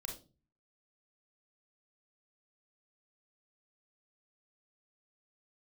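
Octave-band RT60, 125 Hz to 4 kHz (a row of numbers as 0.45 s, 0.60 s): 0.65 s, 0.55 s, 0.40 s, 0.30 s, 0.25 s, 0.30 s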